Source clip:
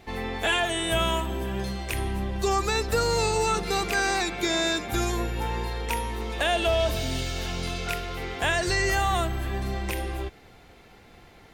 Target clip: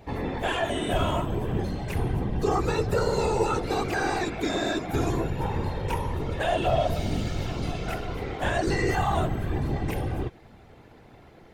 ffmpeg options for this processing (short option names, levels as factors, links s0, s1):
-af "asoftclip=type=tanh:threshold=0.168,afftfilt=real='hypot(re,im)*cos(2*PI*random(0))':imag='hypot(re,im)*sin(2*PI*random(1))':win_size=512:overlap=0.75,tiltshelf=f=1400:g=5.5,volume=1.5"